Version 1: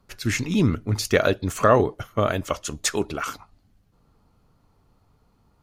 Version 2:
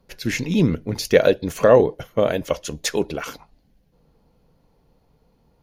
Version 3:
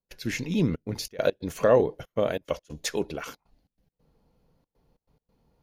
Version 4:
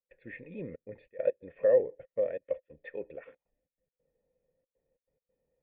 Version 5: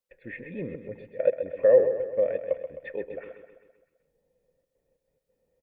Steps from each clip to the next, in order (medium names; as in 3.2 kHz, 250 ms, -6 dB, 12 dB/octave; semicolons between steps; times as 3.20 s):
graphic EQ with 31 bands 100 Hz -11 dB, 160 Hz +4 dB, 500 Hz +8 dB, 1.25 kHz -11 dB, 8 kHz -10 dB; trim +1.5 dB
trance gate ".xxxxxx.xx.x" 139 bpm -24 dB; trim -6.5 dB
cascade formant filter e
feedback delay 130 ms, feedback 54%, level -9.5 dB; trim +5.5 dB